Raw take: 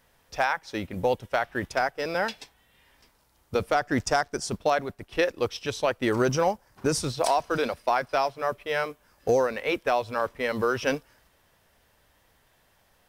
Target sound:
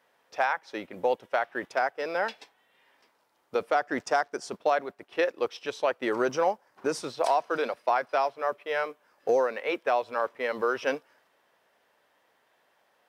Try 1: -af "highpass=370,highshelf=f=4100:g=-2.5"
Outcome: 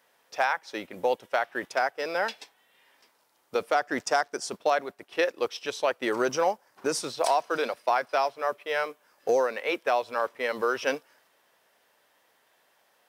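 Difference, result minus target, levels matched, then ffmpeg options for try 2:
8 kHz band +6.5 dB
-af "highpass=370,highshelf=f=4100:g=-12.5"

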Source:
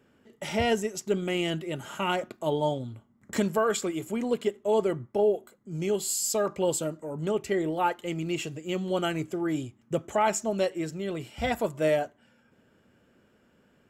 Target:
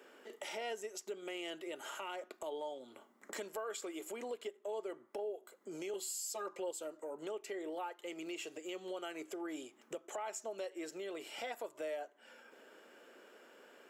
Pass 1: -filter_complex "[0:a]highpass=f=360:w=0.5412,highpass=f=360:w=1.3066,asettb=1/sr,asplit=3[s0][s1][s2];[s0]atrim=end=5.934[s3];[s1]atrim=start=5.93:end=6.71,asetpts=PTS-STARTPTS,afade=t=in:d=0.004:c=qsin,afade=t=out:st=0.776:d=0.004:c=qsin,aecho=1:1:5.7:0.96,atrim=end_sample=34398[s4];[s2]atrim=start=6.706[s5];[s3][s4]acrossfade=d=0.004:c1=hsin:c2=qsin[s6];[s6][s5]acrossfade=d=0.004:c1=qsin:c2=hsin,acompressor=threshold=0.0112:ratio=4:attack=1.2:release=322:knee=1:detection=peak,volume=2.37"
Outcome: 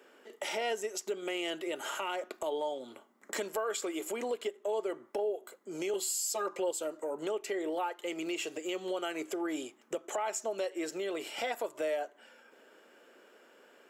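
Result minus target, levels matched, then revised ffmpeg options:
compression: peak gain reduction -8 dB
-filter_complex "[0:a]highpass=f=360:w=0.5412,highpass=f=360:w=1.3066,asettb=1/sr,asplit=3[s0][s1][s2];[s0]atrim=end=5.934[s3];[s1]atrim=start=5.93:end=6.71,asetpts=PTS-STARTPTS,afade=t=in:d=0.004:c=qsin,afade=t=out:st=0.776:d=0.004:c=qsin,aecho=1:1:5.7:0.96,atrim=end_sample=34398[s4];[s2]atrim=start=6.706[s5];[s3][s4]acrossfade=d=0.004:c1=hsin:c2=qsin[s6];[s6][s5]acrossfade=d=0.004:c1=qsin:c2=hsin,acompressor=threshold=0.00335:ratio=4:attack=1.2:release=322:knee=1:detection=peak,volume=2.37"

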